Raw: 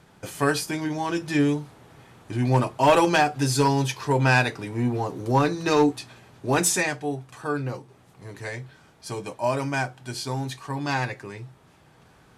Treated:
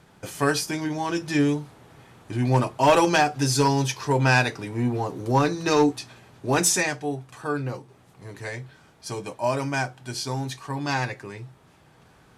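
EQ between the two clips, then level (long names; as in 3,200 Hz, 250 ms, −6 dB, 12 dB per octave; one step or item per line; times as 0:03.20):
dynamic equaliser 5,700 Hz, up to +5 dB, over −48 dBFS, Q 2.9
0.0 dB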